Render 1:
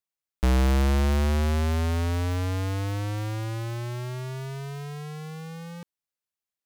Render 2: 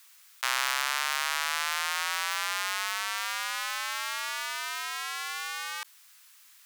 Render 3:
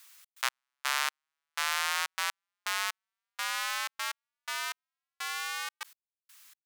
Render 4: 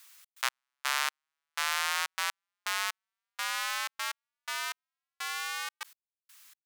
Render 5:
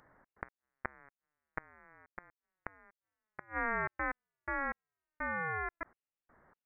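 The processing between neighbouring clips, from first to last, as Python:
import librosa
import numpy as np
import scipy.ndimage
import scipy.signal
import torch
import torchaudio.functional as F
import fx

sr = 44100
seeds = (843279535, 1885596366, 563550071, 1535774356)

y1 = scipy.signal.sosfilt(scipy.signal.butter(4, 1100.0, 'highpass', fs=sr, output='sos'), x)
y1 = fx.env_flatten(y1, sr, amount_pct=50)
y1 = F.gain(torch.from_numpy(y1), 7.0).numpy()
y2 = fx.step_gate(y1, sr, bpm=124, pattern='xx.x...xx....xx', floor_db=-60.0, edge_ms=4.5)
y3 = y2
y4 = fx.gate_flip(y3, sr, shuts_db=-16.0, range_db=-29)
y4 = fx.freq_invert(y4, sr, carrier_hz=2900)
y4 = F.gain(torch.from_numpy(y4), 1.0).numpy()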